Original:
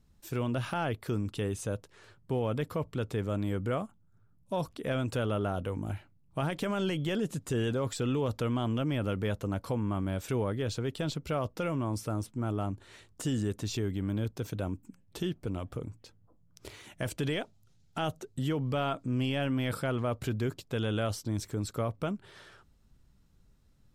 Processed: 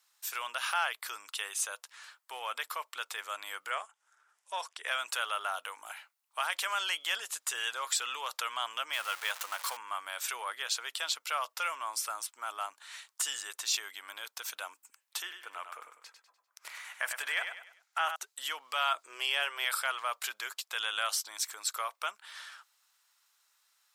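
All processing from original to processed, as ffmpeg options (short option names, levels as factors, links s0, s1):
-filter_complex "[0:a]asettb=1/sr,asplit=3[s0][s1][s2];[s0]atrim=end=3.704[s3];[s1]atrim=start=3.7:end=4.88,asetpts=PTS-STARTPTS,afade=t=in:d=0.004:c=qsin,afade=t=out:st=1.176:d=0.004:c=qsin,highpass=110,equalizer=f=160:t=q:w=4:g=-10,equalizer=f=270:t=q:w=4:g=-7,equalizer=f=410:t=q:w=4:g=6,equalizer=f=1200:t=q:w=4:g=-4,equalizer=f=1800:t=q:w=4:g=3,equalizer=f=4200:t=q:w=4:g=-7,lowpass=f=8800:w=0.5412,lowpass=f=8800:w=1.3066,acompressor=mode=upward:threshold=0.00224:ratio=2.5:attack=3.2:release=140:knee=2.83:detection=peak[s4];[s2]atrim=start=4.876[s5];[s3][s4]acrossfade=d=0.004:c1=hsin:c2=qsin[s6];[s6][s5]acrossfade=d=0.004:c1=qsin:c2=hsin,asettb=1/sr,asplit=3[s7][s8][s9];[s7]atrim=end=8.934[s10];[s8]atrim=start=8.93:end=9.77,asetpts=PTS-STARTPTS,afade=t=in:d=0.004:c=qsin,afade=t=out:st=0.836:d=0.004:c=qsin,aeval=exprs='val(0)+0.5*0.01*sgn(val(0))':c=same,lowshelf=f=220:g=-10[s11];[s9]atrim=start=9.766[s12];[s10][s11]acrossfade=d=0.004:c1=hsin:c2=qsin[s13];[s13][s12]acrossfade=d=0.004:c1=qsin:c2=hsin,asettb=1/sr,asplit=3[s14][s15][s16];[s14]atrim=end=15.224[s17];[s15]atrim=start=15.22:end=18.16,asetpts=PTS-STARTPTS,afade=t=in:d=0.004:c=qsin,afade=t=out:st=2.936:d=0.004:c=qsin,highshelf=f=2600:t=q:w=1.5:g=-6.5,aecho=1:1:99|198|297|396:0.422|0.16|0.0609|0.0231,atrim=end_sample=129654[s18];[s16]atrim=start=18.156[s19];[s17][s18]acrossfade=d=0.004:c1=hsin:c2=qsin[s20];[s20][s19]acrossfade=d=0.004:c1=qsin:c2=hsin,asettb=1/sr,asplit=3[s21][s22][s23];[s21]atrim=end=18.954[s24];[s22]atrim=start=18.95:end=19.65,asetpts=PTS-STARTPTS,afade=t=in:d=0.004:c=qsin,afade=t=out:st=0.696:d=0.004:c=qsin,highpass=f=200:w=0.5412,highpass=f=200:w=1.3066,equalizer=f=380:t=o:w=0.57:g=13.5,bandreject=f=260:w=5.3[s25];[s23]atrim=start=19.646[s26];[s24][s25]acrossfade=d=0.004:c1=hsin:c2=qsin[s27];[s27][s26]acrossfade=d=0.004:c1=qsin:c2=hsin,highpass=f=980:w=0.5412,highpass=f=980:w=1.3066,highshelf=f=4800:g=5.5,volume=2.11"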